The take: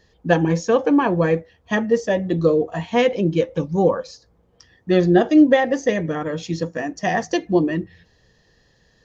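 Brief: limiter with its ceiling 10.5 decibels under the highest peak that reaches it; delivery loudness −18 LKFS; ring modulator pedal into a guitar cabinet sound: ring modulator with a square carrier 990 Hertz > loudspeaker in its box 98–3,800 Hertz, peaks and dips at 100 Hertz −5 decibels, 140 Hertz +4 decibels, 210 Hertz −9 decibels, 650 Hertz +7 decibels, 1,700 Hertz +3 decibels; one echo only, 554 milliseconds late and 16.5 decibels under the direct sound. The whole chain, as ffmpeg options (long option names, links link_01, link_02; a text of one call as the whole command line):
ffmpeg -i in.wav -af "alimiter=limit=-13.5dB:level=0:latency=1,aecho=1:1:554:0.15,aeval=exprs='val(0)*sgn(sin(2*PI*990*n/s))':channel_layout=same,highpass=98,equalizer=frequency=100:width_type=q:width=4:gain=-5,equalizer=frequency=140:width_type=q:width=4:gain=4,equalizer=frequency=210:width_type=q:width=4:gain=-9,equalizer=frequency=650:width_type=q:width=4:gain=7,equalizer=frequency=1700:width_type=q:width=4:gain=3,lowpass=frequency=3800:width=0.5412,lowpass=frequency=3800:width=1.3066,volume=2.5dB" out.wav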